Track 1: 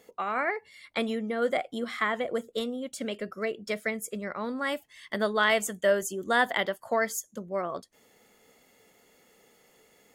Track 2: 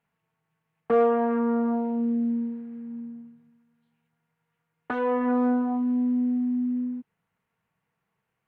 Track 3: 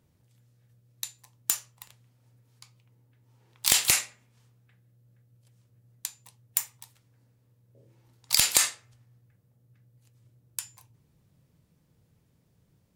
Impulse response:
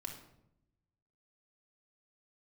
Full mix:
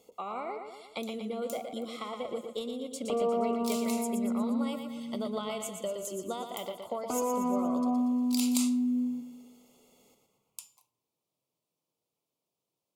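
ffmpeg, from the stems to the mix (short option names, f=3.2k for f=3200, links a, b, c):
-filter_complex "[0:a]equalizer=f=7.8k:t=o:w=0.26:g=2.5,acompressor=threshold=-29dB:ratio=6,volume=-3dB,asplit=3[a][b][c];[b]volume=-6.5dB[d];[1:a]alimiter=limit=-24dB:level=0:latency=1,adelay=2200,volume=0dB,asplit=2[e][f];[f]volume=-9dB[g];[2:a]highpass=480,volume=-12dB,asplit=2[h][i];[i]volume=-6dB[j];[c]apad=whole_len=571149[k];[h][k]sidechaincompress=threshold=-50dB:ratio=8:attack=16:release=840[l];[3:a]atrim=start_sample=2205[m];[j][m]afir=irnorm=-1:irlink=0[n];[d][g]amix=inputs=2:normalize=0,aecho=0:1:118|236|354|472|590|708|826|944:1|0.54|0.292|0.157|0.085|0.0459|0.0248|0.0134[o];[a][e][l][n][o]amix=inputs=5:normalize=0,asuperstop=centerf=1700:order=4:qfactor=1.5"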